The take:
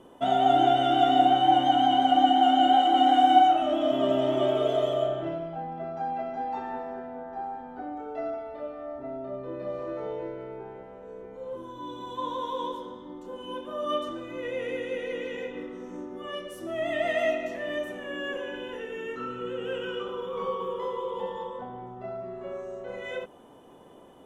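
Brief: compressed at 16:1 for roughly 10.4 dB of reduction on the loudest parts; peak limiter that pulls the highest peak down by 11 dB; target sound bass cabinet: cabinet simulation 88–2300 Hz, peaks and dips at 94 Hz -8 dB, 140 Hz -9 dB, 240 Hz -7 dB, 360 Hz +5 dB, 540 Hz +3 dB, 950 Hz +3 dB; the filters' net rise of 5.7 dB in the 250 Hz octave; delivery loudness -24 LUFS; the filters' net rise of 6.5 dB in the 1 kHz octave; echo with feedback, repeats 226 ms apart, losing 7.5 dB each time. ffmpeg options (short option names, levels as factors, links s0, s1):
-af "equalizer=f=250:t=o:g=8,equalizer=f=1000:t=o:g=8,acompressor=threshold=0.112:ratio=16,alimiter=limit=0.0708:level=0:latency=1,highpass=f=88:w=0.5412,highpass=f=88:w=1.3066,equalizer=f=94:t=q:w=4:g=-8,equalizer=f=140:t=q:w=4:g=-9,equalizer=f=240:t=q:w=4:g=-7,equalizer=f=360:t=q:w=4:g=5,equalizer=f=540:t=q:w=4:g=3,equalizer=f=950:t=q:w=4:g=3,lowpass=f=2300:w=0.5412,lowpass=f=2300:w=1.3066,aecho=1:1:226|452|678|904|1130:0.422|0.177|0.0744|0.0312|0.0131,volume=1.78"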